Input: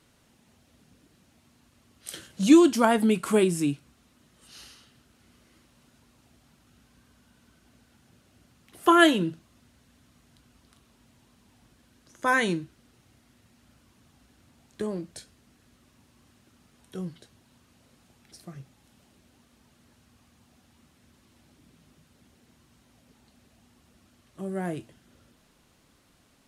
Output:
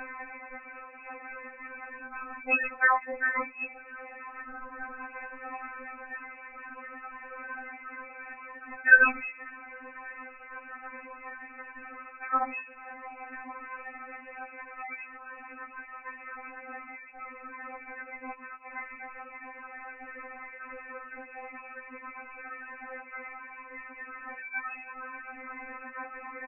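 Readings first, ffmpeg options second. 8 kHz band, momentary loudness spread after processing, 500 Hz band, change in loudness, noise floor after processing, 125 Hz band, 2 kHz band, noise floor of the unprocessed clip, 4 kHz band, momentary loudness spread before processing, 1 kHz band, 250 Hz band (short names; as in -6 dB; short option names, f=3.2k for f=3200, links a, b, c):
under -35 dB, 15 LU, -13.5 dB, -9.5 dB, -49 dBFS, under -35 dB, +7.0 dB, -64 dBFS, under -30 dB, 22 LU, -2.5 dB, -21.0 dB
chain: -filter_complex "[0:a]aeval=exprs='val(0)+0.5*0.0447*sgn(val(0))':c=same,acompressor=mode=upward:threshold=-32dB:ratio=2.5,afftdn=nr=18:nf=-35,highpass=1.3k,lowpass=f=2.5k:t=q:w=0.5098,lowpass=f=2.5k:t=q:w=0.6013,lowpass=f=2.5k:t=q:w=0.9,lowpass=f=2.5k:t=q:w=2.563,afreqshift=-2900,asplit=2[a][b];[b]adelay=1633,volume=-29dB,highshelf=f=4k:g=-36.7[c];[a][c]amix=inputs=2:normalize=0,afftfilt=real='re*3.46*eq(mod(b,12),0)':imag='im*3.46*eq(mod(b,12),0)':win_size=2048:overlap=0.75,volume=8dB"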